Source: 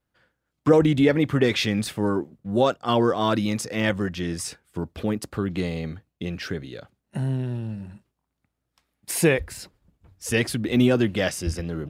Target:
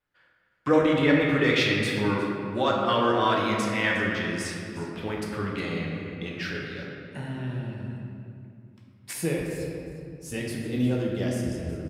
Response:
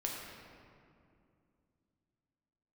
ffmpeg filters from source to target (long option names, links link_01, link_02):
-filter_complex "[0:a]asetnsamples=nb_out_samples=441:pad=0,asendcmd='9.13 equalizer g -5',equalizer=frequency=1900:width=0.49:gain=11,aecho=1:1:359:0.15[link_01];[1:a]atrim=start_sample=2205[link_02];[link_01][link_02]afir=irnorm=-1:irlink=0,volume=-8dB"